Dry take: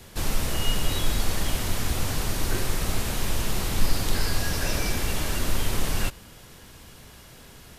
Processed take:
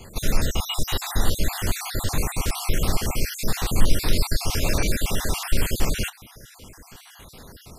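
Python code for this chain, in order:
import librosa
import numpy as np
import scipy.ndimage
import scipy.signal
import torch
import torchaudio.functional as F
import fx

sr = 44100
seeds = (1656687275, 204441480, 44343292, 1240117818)

y = fx.spec_dropout(x, sr, seeds[0], share_pct=51)
y = F.gain(torch.from_numpy(y), 5.0).numpy()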